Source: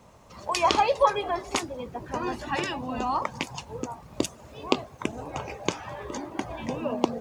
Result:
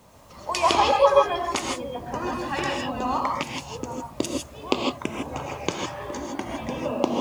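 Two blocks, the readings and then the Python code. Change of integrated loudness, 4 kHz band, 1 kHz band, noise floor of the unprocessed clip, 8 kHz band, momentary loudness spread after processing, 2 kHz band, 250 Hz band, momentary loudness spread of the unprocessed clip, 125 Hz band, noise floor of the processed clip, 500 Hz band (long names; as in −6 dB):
+3.5 dB, +3.5 dB, +3.0 dB, −51 dBFS, +2.5 dB, 14 LU, +2.5 dB, +2.5 dB, 14 LU, +2.0 dB, −46 dBFS, +4.5 dB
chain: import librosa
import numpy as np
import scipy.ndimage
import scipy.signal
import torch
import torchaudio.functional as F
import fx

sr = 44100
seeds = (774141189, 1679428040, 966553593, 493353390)

y = fx.quant_dither(x, sr, seeds[0], bits=10, dither='none')
y = fx.rev_gated(y, sr, seeds[1], gate_ms=180, shape='rising', drr_db=0.5)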